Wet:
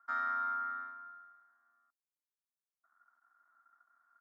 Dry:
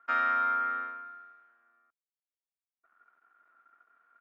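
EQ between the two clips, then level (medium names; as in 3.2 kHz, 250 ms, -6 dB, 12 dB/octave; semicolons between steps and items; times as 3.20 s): dynamic bell 920 Hz, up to -3 dB, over -42 dBFS, Q 0.74; high-pass 210 Hz; static phaser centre 1.1 kHz, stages 4; -4.0 dB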